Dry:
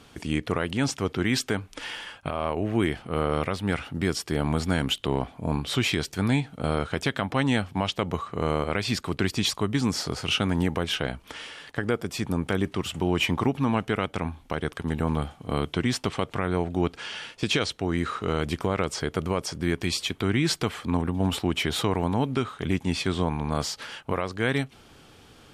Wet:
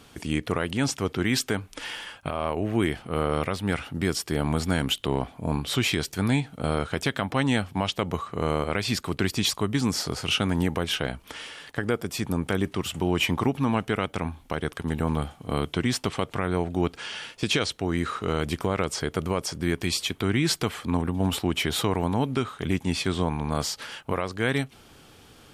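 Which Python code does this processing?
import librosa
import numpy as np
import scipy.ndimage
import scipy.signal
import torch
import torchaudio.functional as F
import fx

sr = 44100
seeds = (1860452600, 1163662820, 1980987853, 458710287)

y = fx.high_shelf(x, sr, hz=11000.0, db=9.5)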